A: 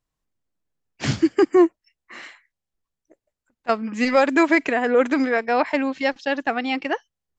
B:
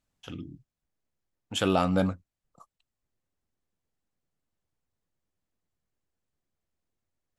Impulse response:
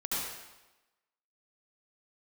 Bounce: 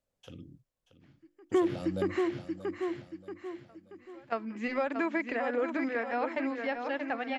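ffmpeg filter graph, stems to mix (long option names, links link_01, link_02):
-filter_complex "[0:a]bandreject=frequency=50:width_type=h:width=6,bandreject=frequency=100:width_type=h:width=6,bandreject=frequency=150:width_type=h:width=6,bandreject=frequency=200:width_type=h:width=6,bandreject=frequency=250:width_type=h:width=6,bandreject=frequency=300:width_type=h:width=6,bandreject=frequency=350:width_type=h:width=6,acrossover=split=3500[link_01][link_02];[link_02]acompressor=threshold=-52dB:ratio=4:attack=1:release=60[link_03];[link_01][link_03]amix=inputs=2:normalize=0,volume=-0.5dB,asplit=2[link_04][link_05];[link_05]volume=-9.5dB[link_06];[1:a]equalizer=frequency=530:width=2.3:gain=14.5,acrossover=split=230|3000[link_07][link_08][link_09];[link_08]acompressor=threshold=-58dB:ratio=1.5[link_10];[link_07][link_10][link_09]amix=inputs=3:normalize=0,volume=-6.5dB,asplit=3[link_11][link_12][link_13];[link_12]volume=-14.5dB[link_14];[link_13]apad=whole_len=325757[link_15];[link_04][link_15]sidechaingate=range=-40dB:threshold=-57dB:ratio=16:detection=peak[link_16];[link_06][link_14]amix=inputs=2:normalize=0,aecho=0:1:631|1262|1893|2524|3155|3786:1|0.41|0.168|0.0689|0.0283|0.0116[link_17];[link_16][link_11][link_17]amix=inputs=3:normalize=0,acompressor=threshold=-27dB:ratio=3"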